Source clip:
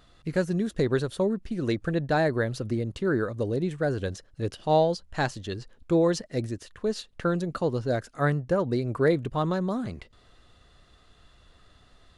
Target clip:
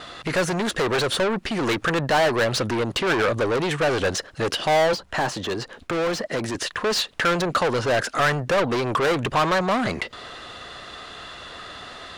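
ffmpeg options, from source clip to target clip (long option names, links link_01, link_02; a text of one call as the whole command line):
ffmpeg -i in.wav -filter_complex "[0:a]asplit=2[link_01][link_02];[link_02]highpass=frequency=720:poles=1,volume=32dB,asoftclip=type=tanh:threshold=-10dB[link_03];[link_01][link_03]amix=inputs=2:normalize=0,lowpass=frequency=3400:poles=1,volume=-6dB,asettb=1/sr,asplit=3[link_04][link_05][link_06];[link_04]atrim=end=4.934[link_07];[link_05]atrim=start=4.93:end=6.55,asetpts=PTS-STARTPTS,afade=type=in:duration=0.004:curve=qsin,afade=type=out:start_time=1.616:duration=0.004:curve=qsin,acrossover=split=120|1400[link_08][link_09][link_10];[link_08]acompressor=threshold=-40dB:ratio=4[link_11];[link_09]acompressor=threshold=-20dB:ratio=4[link_12];[link_10]acompressor=threshold=-32dB:ratio=4[link_13];[link_11][link_12][link_13]amix=inputs=3:normalize=0[link_14];[link_06]atrim=start=6.546[link_15];[link_07][link_14]acrossfade=duration=0.004:curve1=hsin:curve2=qsin[link_16];[link_16][link_15]acrossfade=duration=0.004:curve1=qsin:curve2=hsin,acrossover=split=550[link_17][link_18];[link_17]alimiter=limit=-22.5dB:level=0:latency=1[link_19];[link_18]agate=range=-33dB:threshold=-49dB:ratio=3:detection=peak[link_20];[link_19][link_20]amix=inputs=2:normalize=0" out.wav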